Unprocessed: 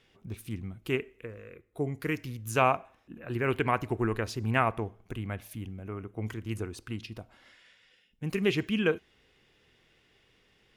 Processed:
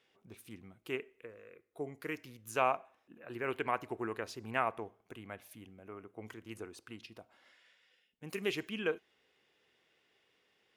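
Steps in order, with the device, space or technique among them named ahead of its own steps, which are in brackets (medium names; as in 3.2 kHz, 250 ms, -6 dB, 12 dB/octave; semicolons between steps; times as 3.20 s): filter by subtraction (in parallel: low-pass 580 Hz 12 dB/octave + polarity flip); 8.28–8.69 s: on the sum: treble shelf 5.6 kHz +8 dB; trim -7.5 dB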